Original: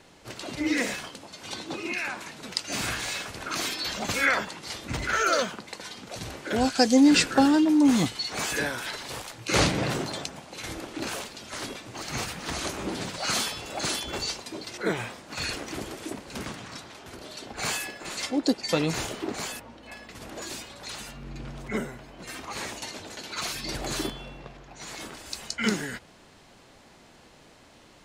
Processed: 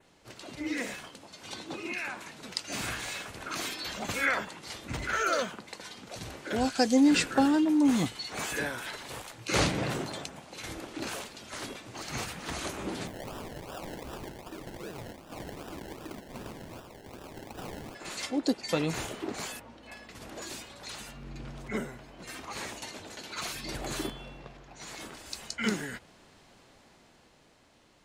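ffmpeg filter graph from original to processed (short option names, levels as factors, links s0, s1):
-filter_complex "[0:a]asettb=1/sr,asplit=3[s0][s1][s2];[s0]atrim=end=13.074[s3];[s1]atrim=start=13.07:end=17.95,asetpts=PTS-STARTPTS,afade=t=in:d=0.004:c=qsin,afade=t=out:st=4.876:d=0.004:c=qsin,acompressor=threshold=0.0224:ratio=12:attack=3.2:release=140:knee=1:detection=peak,acrusher=samples=29:mix=1:aa=0.000001:lfo=1:lforange=17.4:lforate=2.6[s4];[s2]atrim=start=17.946[s5];[s3][s4]acrossfade=d=0.004:c1=hsin:c2=qsin[s6];[s6][s5]acrossfade=d=0.004:c1=qsin:c2=hsin,adynamicequalizer=threshold=0.00447:dfrequency=5000:dqfactor=1.7:tfrequency=5000:tqfactor=1.7:attack=5:release=100:ratio=0.375:range=2.5:mode=cutabove:tftype=bell,dynaudnorm=f=110:g=21:m=1.68,volume=0.398"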